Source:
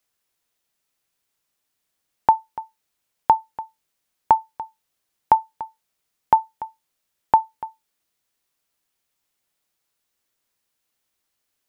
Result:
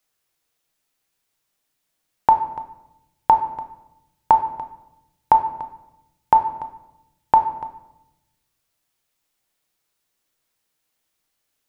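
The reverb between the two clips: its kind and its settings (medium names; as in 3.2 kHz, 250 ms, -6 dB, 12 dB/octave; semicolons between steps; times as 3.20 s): simulated room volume 300 m³, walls mixed, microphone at 0.58 m; trim +1 dB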